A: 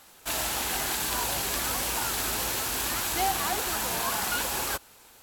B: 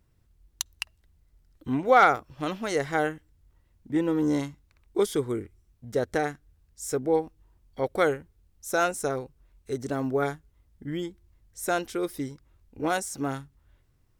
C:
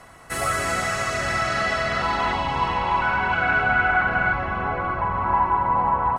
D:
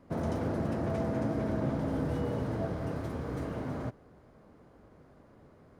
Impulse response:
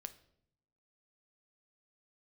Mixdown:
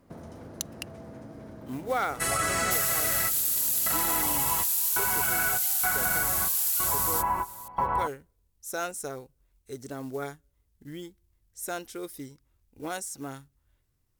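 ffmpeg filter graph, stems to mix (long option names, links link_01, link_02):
-filter_complex "[0:a]aderivative,adelay=2450,volume=1dB[link_01];[1:a]acrusher=bits=7:mode=log:mix=0:aa=0.000001,volume=-8.5dB,asplit=3[link_02][link_03][link_04];[link_03]volume=-22.5dB[link_05];[2:a]adelay=1900,volume=-2.5dB,asplit=2[link_06][link_07];[link_07]volume=-22dB[link_08];[3:a]acompressor=threshold=-38dB:ratio=10,volume=-2.5dB[link_09];[link_04]apad=whole_len=360798[link_10];[link_06][link_10]sidechaingate=range=-33dB:threshold=-57dB:ratio=16:detection=peak[link_11];[4:a]atrim=start_sample=2205[link_12];[link_05][link_08]amix=inputs=2:normalize=0[link_13];[link_13][link_12]afir=irnorm=-1:irlink=0[link_14];[link_01][link_02][link_11][link_09][link_14]amix=inputs=5:normalize=0,aemphasis=mode=production:type=cd,acompressor=threshold=-23dB:ratio=6"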